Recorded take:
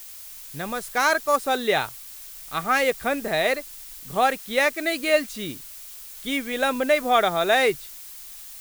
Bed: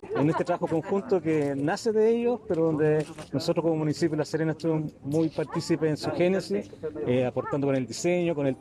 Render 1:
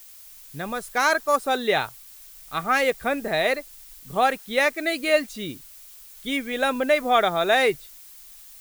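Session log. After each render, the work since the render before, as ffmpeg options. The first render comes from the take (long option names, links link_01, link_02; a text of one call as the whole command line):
ffmpeg -i in.wav -af "afftdn=noise_reduction=6:noise_floor=-41" out.wav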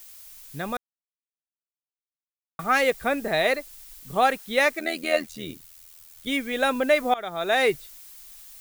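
ffmpeg -i in.wav -filter_complex "[0:a]asettb=1/sr,asplit=3[link_01][link_02][link_03];[link_01]atrim=end=4.794[link_04];[link_02]atrim=start=4.79:end=6.27,asetpts=PTS-STARTPTS,afade=type=in:duration=0.004:curve=qsin,afade=type=out:start_time=1.476:duration=0.004:curve=qsin,tremolo=f=81:d=0.788[link_05];[link_03]atrim=start=6.266[link_06];[link_04][link_05]acrossfade=duration=0.004:curve1=hsin:curve2=qsin[link_07];[link_07][link_06]acrossfade=duration=0.004:curve1=qsin:curve2=hsin,asplit=4[link_08][link_09][link_10][link_11];[link_08]atrim=end=0.77,asetpts=PTS-STARTPTS,afade=type=out:start_time=0.766:duration=0.004:curve=hsin[link_12];[link_09]atrim=start=0.77:end=2.59,asetpts=PTS-STARTPTS,volume=0[link_13];[link_10]atrim=start=2.59:end=7.14,asetpts=PTS-STARTPTS,afade=type=in:duration=0.004:curve=hsin,afade=type=out:start_time=4.546:duration=0.004:curve=hsin:silence=0.0794328[link_14];[link_11]atrim=start=7.14,asetpts=PTS-STARTPTS,afade=type=in:duration=0.57:silence=0.0794328[link_15];[link_12][link_13][link_14][link_15]concat=n=4:v=0:a=1" out.wav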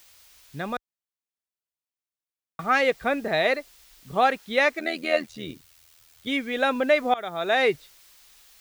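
ffmpeg -i in.wav -filter_complex "[0:a]acrossover=split=5900[link_01][link_02];[link_02]acompressor=threshold=-54dB:ratio=4:attack=1:release=60[link_03];[link_01][link_03]amix=inputs=2:normalize=0,highpass=41" out.wav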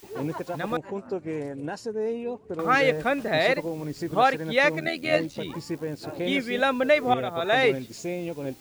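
ffmpeg -i in.wav -i bed.wav -filter_complex "[1:a]volume=-6.5dB[link_01];[0:a][link_01]amix=inputs=2:normalize=0" out.wav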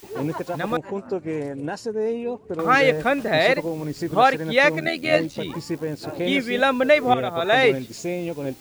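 ffmpeg -i in.wav -af "volume=4dB" out.wav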